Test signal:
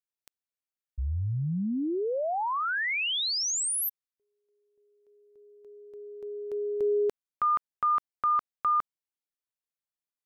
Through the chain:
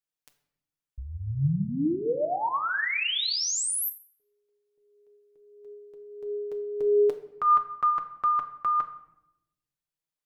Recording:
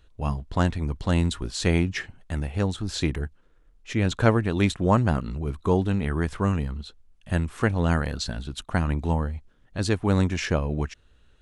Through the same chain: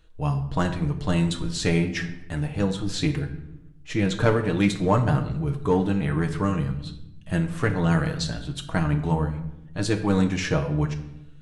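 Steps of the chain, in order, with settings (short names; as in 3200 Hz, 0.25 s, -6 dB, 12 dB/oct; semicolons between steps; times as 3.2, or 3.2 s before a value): flange 1.5 Hz, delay 6 ms, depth 1 ms, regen +24%; in parallel at -5 dB: hard clip -20 dBFS; on the sum: shoebox room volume 280 m³, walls mixed, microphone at 0.51 m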